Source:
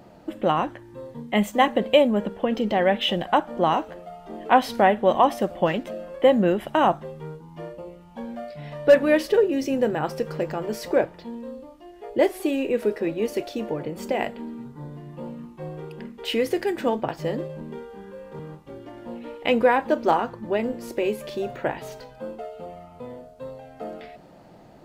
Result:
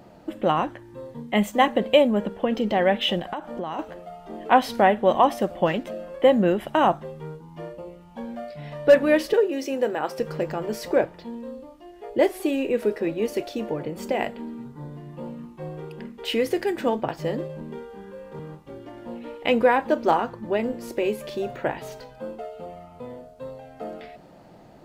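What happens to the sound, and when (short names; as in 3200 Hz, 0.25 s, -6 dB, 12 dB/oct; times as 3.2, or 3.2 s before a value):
3.19–3.79 compressor 12:1, threshold -26 dBFS
9.33–10.19 HPF 330 Hz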